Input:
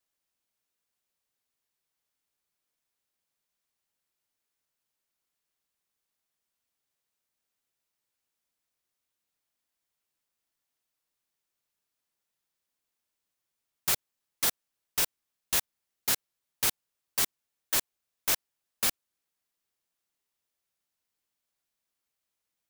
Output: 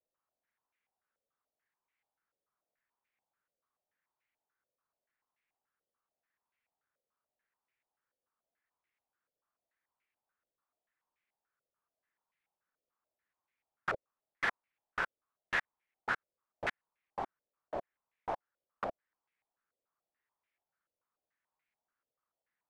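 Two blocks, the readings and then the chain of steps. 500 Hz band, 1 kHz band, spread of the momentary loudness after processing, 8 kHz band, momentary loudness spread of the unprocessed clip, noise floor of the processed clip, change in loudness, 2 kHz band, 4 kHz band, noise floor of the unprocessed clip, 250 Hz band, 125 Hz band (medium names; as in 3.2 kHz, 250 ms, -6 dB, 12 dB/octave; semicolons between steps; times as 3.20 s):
+1.5 dB, +2.5 dB, 8 LU, -32.5 dB, 4 LU, under -85 dBFS, -10.0 dB, +1.5 dB, -17.0 dB, -85 dBFS, -5.0 dB, -6.5 dB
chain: bass shelf 440 Hz -4.5 dB; step-sequenced low-pass 6.9 Hz 540–2200 Hz; trim -2.5 dB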